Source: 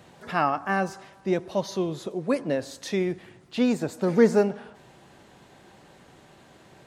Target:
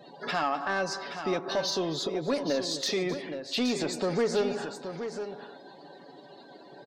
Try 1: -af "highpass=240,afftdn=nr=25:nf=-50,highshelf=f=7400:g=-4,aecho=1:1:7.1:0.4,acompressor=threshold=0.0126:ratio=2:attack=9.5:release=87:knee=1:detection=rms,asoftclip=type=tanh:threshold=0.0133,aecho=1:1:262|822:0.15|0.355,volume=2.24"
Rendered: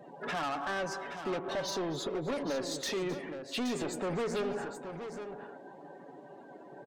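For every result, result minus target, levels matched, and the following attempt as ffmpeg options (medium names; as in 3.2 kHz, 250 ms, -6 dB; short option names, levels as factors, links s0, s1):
saturation: distortion +10 dB; 4 kHz band -2.5 dB
-af "highpass=240,afftdn=nr=25:nf=-50,highshelf=f=7400:g=-4,aecho=1:1:7.1:0.4,acompressor=threshold=0.0126:ratio=2:attack=9.5:release=87:knee=1:detection=rms,asoftclip=type=tanh:threshold=0.0447,aecho=1:1:262|822:0.15|0.355,volume=2.24"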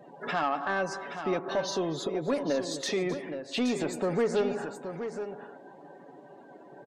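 4 kHz band -5.0 dB
-af "highpass=240,equalizer=f=4600:t=o:w=0.93:g=10,afftdn=nr=25:nf=-50,highshelf=f=7400:g=-4,aecho=1:1:7.1:0.4,acompressor=threshold=0.0126:ratio=2:attack=9.5:release=87:knee=1:detection=rms,asoftclip=type=tanh:threshold=0.0447,aecho=1:1:262|822:0.15|0.355,volume=2.24"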